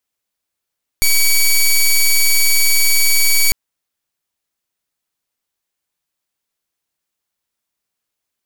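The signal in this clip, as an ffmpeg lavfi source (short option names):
-f lavfi -i "aevalsrc='0.282*(2*lt(mod(2270*t,1),0.1)-1)':d=2.5:s=44100"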